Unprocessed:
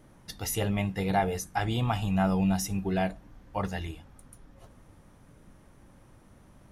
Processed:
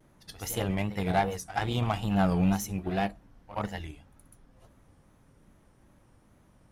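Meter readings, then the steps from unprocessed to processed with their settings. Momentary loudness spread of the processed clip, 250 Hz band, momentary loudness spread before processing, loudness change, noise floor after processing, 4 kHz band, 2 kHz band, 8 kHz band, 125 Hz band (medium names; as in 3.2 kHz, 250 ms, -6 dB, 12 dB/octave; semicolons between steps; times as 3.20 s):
14 LU, -0.5 dB, 11 LU, -0.5 dB, -62 dBFS, -1.0 dB, -0.5 dB, -3.0 dB, -0.5 dB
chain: Chebyshev shaper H 7 -24 dB, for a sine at -14 dBFS; pre-echo 73 ms -14 dB; wow and flutter 110 cents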